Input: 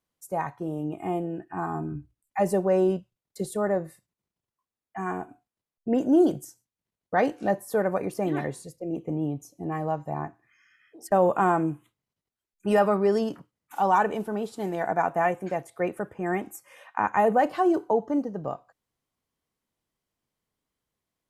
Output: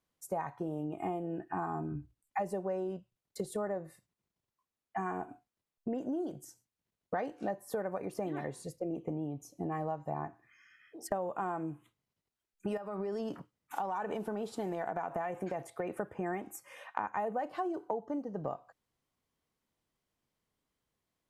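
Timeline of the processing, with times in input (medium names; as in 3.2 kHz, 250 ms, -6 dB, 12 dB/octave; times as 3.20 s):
12.77–15.90 s: compression 12:1, threshold -28 dBFS
whole clip: treble shelf 8.1 kHz -4.5 dB; compression 12:1, threshold -34 dBFS; dynamic bell 760 Hz, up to +3 dB, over -50 dBFS, Q 0.83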